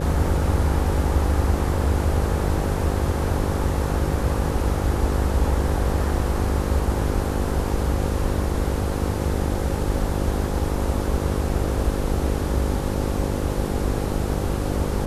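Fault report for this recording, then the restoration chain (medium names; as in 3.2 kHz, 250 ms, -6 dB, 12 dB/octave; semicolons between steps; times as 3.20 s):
buzz 50 Hz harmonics 11 -27 dBFS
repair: de-hum 50 Hz, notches 11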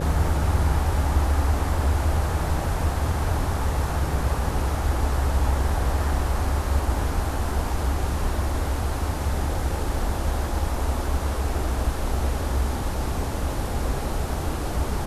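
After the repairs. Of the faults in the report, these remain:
nothing left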